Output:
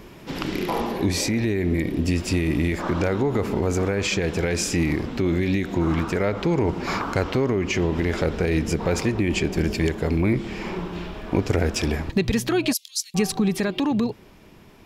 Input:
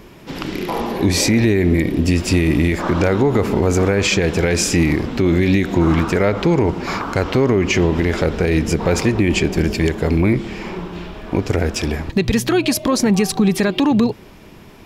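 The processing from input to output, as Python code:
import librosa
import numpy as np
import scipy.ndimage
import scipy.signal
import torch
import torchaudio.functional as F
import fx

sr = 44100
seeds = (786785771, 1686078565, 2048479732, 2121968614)

y = fx.cheby2_highpass(x, sr, hz=850.0, order=4, stop_db=70, at=(12.72, 13.14), fade=0.02)
y = fx.rider(y, sr, range_db=4, speed_s=0.5)
y = y * 10.0 ** (-6.0 / 20.0)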